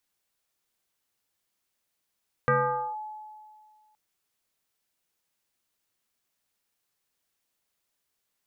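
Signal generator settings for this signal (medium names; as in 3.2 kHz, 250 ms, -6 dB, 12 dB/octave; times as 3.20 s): FM tone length 1.47 s, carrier 856 Hz, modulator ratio 0.42, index 2.2, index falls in 0.48 s linear, decay 1.96 s, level -18 dB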